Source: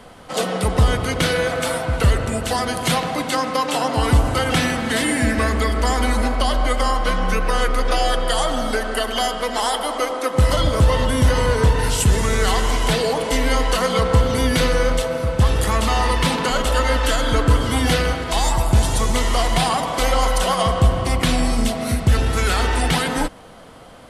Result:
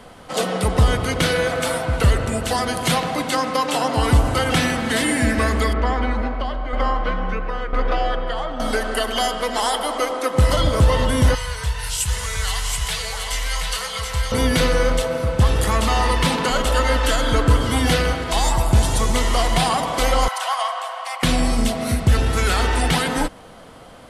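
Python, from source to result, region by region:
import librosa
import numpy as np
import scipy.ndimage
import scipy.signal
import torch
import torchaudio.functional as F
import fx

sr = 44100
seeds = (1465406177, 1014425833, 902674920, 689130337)

y = fx.chain(x, sr, fx.lowpass(hz=2500.0, slope=12),
    fx.tremolo_shape(shape='saw_down', hz=1.0, depth_pct=65), at=(5.73, 8.6))
y = fx.chain(y, sr, fx.tone_stack(knobs='10-0-10'),
    fx.doubler(ms=14.0, db=-13),
    fx.echo_single(ms=726, db=-4.5), at=(11.35, 14.32))
y = fx.chain(y, sr, fx.steep_highpass(hz=710.0, slope=36),
    fx.high_shelf(hz=3300.0, db=-7.0), at=(20.28, 21.23))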